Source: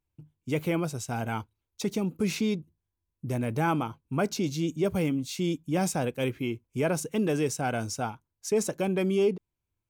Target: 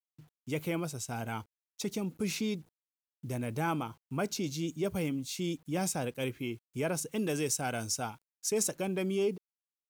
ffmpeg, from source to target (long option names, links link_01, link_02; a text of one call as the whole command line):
ffmpeg -i in.wav -af "asetnsamples=nb_out_samples=441:pad=0,asendcmd='7.18 highshelf g 11.5;8.75 highshelf g 5.5',highshelf=frequency=3300:gain=6,acrusher=bits=9:mix=0:aa=0.000001,volume=-6dB" out.wav